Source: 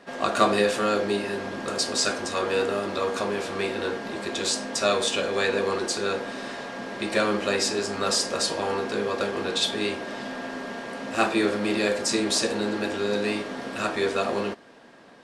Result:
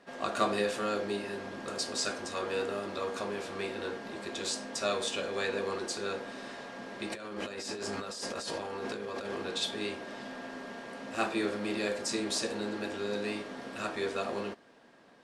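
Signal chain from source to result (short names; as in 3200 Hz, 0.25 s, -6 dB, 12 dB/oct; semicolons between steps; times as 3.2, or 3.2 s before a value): 7.1–9.42 negative-ratio compressor -30 dBFS, ratio -1; gain -8.5 dB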